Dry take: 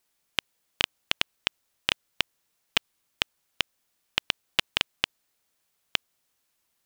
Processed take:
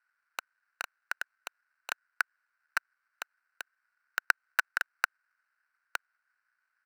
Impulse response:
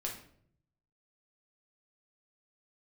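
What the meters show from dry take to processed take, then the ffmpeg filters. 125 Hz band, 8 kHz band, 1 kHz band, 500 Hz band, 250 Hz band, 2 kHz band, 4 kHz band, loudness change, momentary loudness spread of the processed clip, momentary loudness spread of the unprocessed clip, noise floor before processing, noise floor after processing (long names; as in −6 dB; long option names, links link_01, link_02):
below −30 dB, −5.0 dB, +1.0 dB, −10.5 dB, below −20 dB, 0.0 dB, −19.0 dB, −5.5 dB, 17 LU, 5 LU, −76 dBFS, −82 dBFS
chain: -af "aresample=8000,asoftclip=type=tanh:threshold=-12dB,aresample=44100,adynamicsmooth=sensitivity=2.5:basefreq=2300,acrusher=samples=13:mix=1:aa=0.000001,tremolo=f=220:d=0.571,highpass=frequency=1500:width_type=q:width=9.4,volume=2dB"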